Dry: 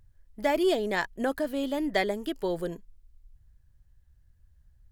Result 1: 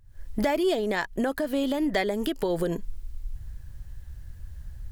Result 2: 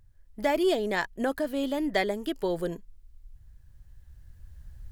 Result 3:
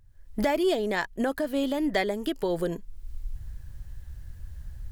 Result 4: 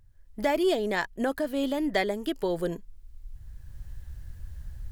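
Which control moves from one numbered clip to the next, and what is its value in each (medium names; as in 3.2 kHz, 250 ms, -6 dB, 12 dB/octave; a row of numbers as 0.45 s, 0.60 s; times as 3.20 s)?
recorder AGC, rising by: 91 dB/s, 5.9 dB/s, 36 dB/s, 14 dB/s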